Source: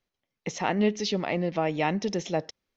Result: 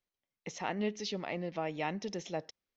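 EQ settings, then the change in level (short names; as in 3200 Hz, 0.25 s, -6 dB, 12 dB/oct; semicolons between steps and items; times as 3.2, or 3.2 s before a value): low shelf 480 Hz -3 dB; -8.0 dB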